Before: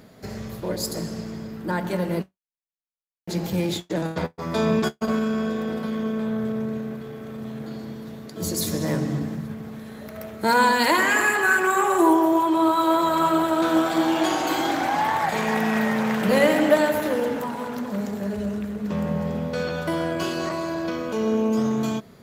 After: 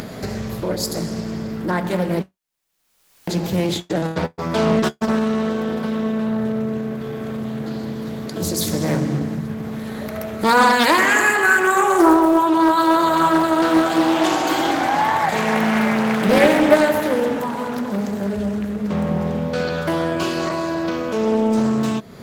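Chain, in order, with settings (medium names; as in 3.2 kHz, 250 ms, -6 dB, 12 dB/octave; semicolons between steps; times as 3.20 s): upward compressor, threshold -25 dBFS; loudspeaker Doppler distortion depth 0.38 ms; trim +4.5 dB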